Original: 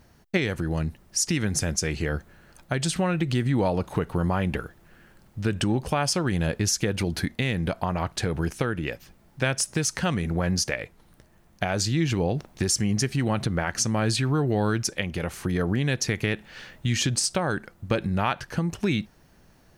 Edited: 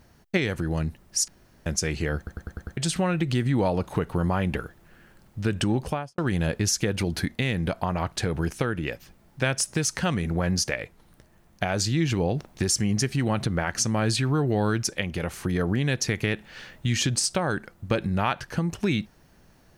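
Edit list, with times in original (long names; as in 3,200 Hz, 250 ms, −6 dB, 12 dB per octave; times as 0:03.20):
0:01.28–0:01.66: fill with room tone
0:02.17: stutter in place 0.10 s, 6 plays
0:05.82–0:06.18: fade out and dull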